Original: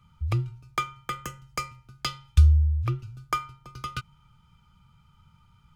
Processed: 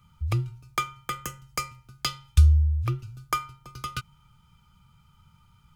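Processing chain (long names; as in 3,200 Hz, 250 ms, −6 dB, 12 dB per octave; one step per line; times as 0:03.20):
high-shelf EQ 6,900 Hz +9 dB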